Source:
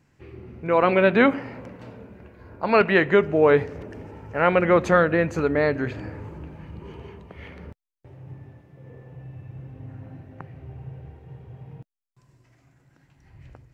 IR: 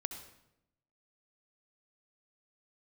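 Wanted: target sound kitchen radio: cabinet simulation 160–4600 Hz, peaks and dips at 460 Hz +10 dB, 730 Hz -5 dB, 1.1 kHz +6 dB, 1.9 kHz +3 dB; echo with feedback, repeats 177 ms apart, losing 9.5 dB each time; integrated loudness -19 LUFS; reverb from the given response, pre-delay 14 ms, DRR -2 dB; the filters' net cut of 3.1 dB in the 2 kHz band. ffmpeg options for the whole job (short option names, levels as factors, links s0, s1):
-filter_complex "[0:a]equalizer=f=2000:t=o:g=-6.5,aecho=1:1:177|354|531|708:0.335|0.111|0.0365|0.012,asplit=2[s0][s1];[1:a]atrim=start_sample=2205,adelay=14[s2];[s1][s2]afir=irnorm=-1:irlink=0,volume=1.33[s3];[s0][s3]amix=inputs=2:normalize=0,highpass=160,equalizer=f=460:t=q:w=4:g=10,equalizer=f=730:t=q:w=4:g=-5,equalizer=f=1100:t=q:w=4:g=6,equalizer=f=1900:t=q:w=4:g=3,lowpass=f=4600:w=0.5412,lowpass=f=4600:w=1.3066,volume=0.501"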